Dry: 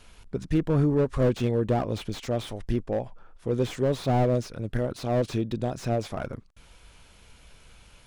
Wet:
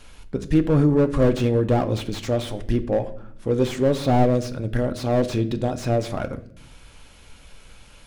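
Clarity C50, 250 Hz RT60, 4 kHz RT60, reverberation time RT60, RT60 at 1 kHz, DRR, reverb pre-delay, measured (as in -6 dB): 15.5 dB, 1.2 s, 0.50 s, 0.65 s, 0.50 s, 9.0 dB, 4 ms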